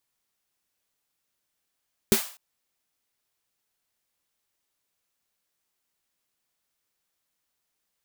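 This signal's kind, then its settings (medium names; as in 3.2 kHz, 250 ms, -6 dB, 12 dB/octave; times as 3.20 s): snare drum length 0.25 s, tones 220 Hz, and 390 Hz, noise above 600 Hz, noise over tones -6 dB, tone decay 0.10 s, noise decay 0.43 s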